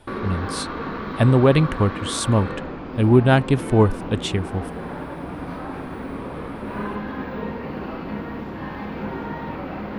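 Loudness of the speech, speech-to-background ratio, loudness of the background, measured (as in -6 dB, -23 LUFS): -20.0 LUFS, 11.0 dB, -31.0 LUFS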